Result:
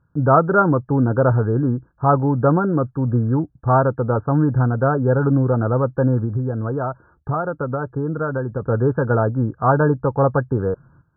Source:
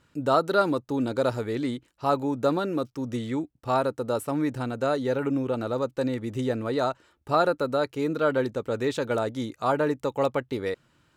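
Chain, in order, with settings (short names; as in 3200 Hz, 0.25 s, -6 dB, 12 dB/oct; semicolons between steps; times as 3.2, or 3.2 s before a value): gate -60 dBFS, range -13 dB; resonant low shelf 200 Hz +7.5 dB, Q 1.5; notch 590 Hz, Q 12; 6.24–8.62 compressor, threshold -28 dBFS, peak gain reduction 10.5 dB; brick-wall FIR low-pass 1700 Hz; gain +8.5 dB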